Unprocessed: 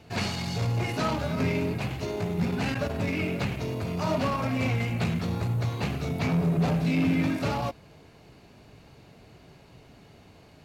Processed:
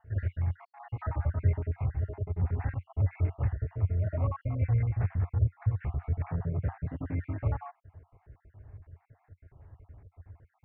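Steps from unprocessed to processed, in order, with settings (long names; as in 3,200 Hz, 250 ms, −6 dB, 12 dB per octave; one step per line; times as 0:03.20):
time-frequency cells dropped at random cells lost 50%
Chebyshev low-pass filter 1,900 Hz, order 4
low shelf with overshoot 130 Hz +13 dB, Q 3
level −7.5 dB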